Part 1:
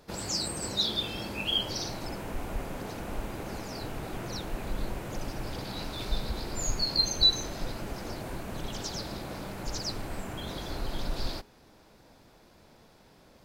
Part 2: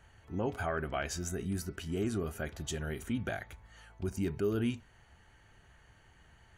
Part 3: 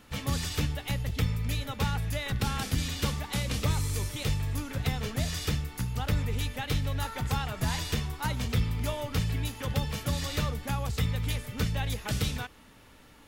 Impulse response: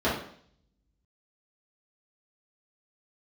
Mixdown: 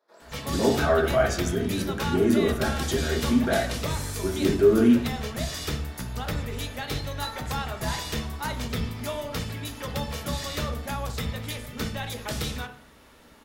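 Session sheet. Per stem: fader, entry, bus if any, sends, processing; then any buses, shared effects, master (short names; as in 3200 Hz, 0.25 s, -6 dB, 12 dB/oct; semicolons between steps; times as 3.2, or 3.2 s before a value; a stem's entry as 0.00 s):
-18.0 dB, 0.00 s, send -5.5 dB, HPF 670 Hz 12 dB/oct; high shelf 2500 Hz -9.5 dB
+1.5 dB, 0.20 s, send -6.5 dB, dry
+1.0 dB, 0.20 s, send -18.5 dB, dry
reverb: on, RT60 0.60 s, pre-delay 3 ms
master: low shelf 230 Hz -6 dB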